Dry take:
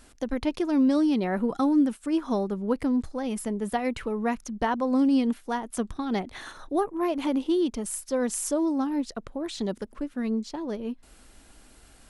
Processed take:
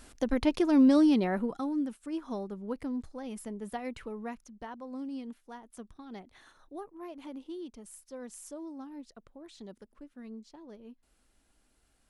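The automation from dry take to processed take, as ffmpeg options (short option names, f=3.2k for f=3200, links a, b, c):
-af "volume=0.5dB,afade=t=out:st=1.08:d=0.51:silence=0.298538,afade=t=out:st=4.09:d=0.45:silence=0.446684"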